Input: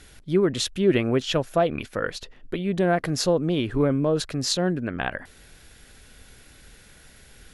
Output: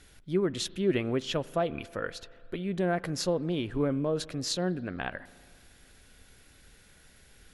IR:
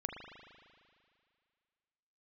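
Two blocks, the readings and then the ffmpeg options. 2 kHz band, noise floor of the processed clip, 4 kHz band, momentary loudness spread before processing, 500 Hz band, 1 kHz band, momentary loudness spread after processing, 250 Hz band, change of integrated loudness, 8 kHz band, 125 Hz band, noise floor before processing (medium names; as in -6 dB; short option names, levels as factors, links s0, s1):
-7.0 dB, -58 dBFS, -7.0 dB, 9 LU, -7.0 dB, -7.0 dB, 9 LU, -6.5 dB, -7.0 dB, -7.0 dB, -7.0 dB, -51 dBFS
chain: -filter_complex "[0:a]asplit=2[s0][s1];[1:a]atrim=start_sample=2205,adelay=11[s2];[s1][s2]afir=irnorm=-1:irlink=0,volume=0.141[s3];[s0][s3]amix=inputs=2:normalize=0,volume=0.447"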